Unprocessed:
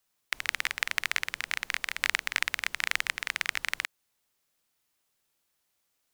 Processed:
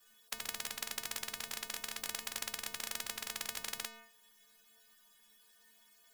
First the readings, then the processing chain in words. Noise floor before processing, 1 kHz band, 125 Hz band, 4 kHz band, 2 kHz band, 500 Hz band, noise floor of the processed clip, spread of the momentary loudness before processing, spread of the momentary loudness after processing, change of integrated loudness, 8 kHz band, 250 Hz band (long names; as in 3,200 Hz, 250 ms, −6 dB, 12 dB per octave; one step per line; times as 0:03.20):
−77 dBFS, −9.5 dB, can't be measured, −8.0 dB, −16.5 dB, −2.5 dB, −66 dBFS, 4 LU, 3 LU, −9.5 dB, −1.0 dB, +0.5 dB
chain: stiff-string resonator 220 Hz, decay 0.42 s, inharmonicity 0.008
hollow resonant body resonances 1,700/3,300 Hz, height 17 dB
every bin compressed towards the loudest bin 10 to 1
level +11 dB